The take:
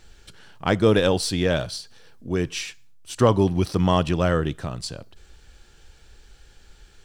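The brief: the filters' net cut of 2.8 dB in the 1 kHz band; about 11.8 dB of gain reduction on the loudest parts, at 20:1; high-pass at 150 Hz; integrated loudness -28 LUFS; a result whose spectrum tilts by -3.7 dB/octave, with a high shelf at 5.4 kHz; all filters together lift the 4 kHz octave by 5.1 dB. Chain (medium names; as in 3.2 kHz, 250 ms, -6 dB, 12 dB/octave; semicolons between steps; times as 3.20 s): high-pass 150 Hz; peaking EQ 1 kHz -4 dB; peaking EQ 4 kHz +4.5 dB; treble shelf 5.4 kHz +5 dB; compression 20:1, threshold -24 dBFS; trim +2.5 dB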